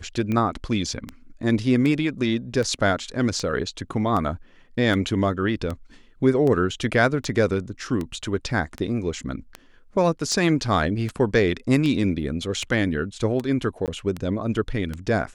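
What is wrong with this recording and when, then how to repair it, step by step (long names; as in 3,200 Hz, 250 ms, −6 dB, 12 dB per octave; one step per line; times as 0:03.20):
scratch tick 78 rpm −16 dBFS
0:13.86–0:13.88: drop-out 18 ms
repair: click removal
repair the gap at 0:13.86, 18 ms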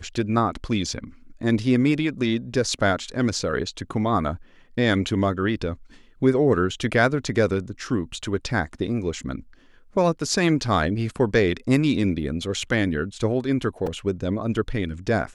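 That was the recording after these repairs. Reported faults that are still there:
none of them is left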